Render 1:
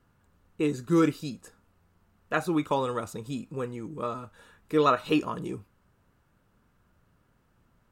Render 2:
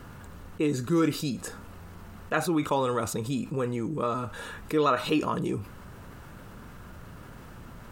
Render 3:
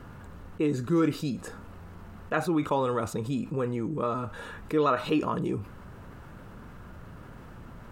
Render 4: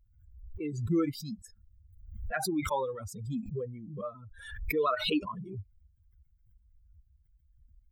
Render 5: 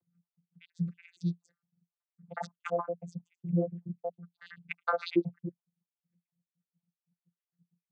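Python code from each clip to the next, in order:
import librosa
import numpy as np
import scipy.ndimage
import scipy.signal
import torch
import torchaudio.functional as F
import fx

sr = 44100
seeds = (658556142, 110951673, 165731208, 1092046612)

y1 = fx.env_flatten(x, sr, amount_pct=50)
y1 = y1 * librosa.db_to_amplitude(-2.5)
y2 = fx.high_shelf(y1, sr, hz=3300.0, db=-9.0)
y3 = fx.bin_expand(y2, sr, power=3.0)
y3 = fx.pre_swell(y3, sr, db_per_s=60.0)
y4 = fx.spec_dropout(y3, sr, seeds[0], share_pct=69)
y4 = fx.vocoder(y4, sr, bands=16, carrier='saw', carrier_hz=172.0)
y4 = y4 * librosa.db_to_amplitude(5.0)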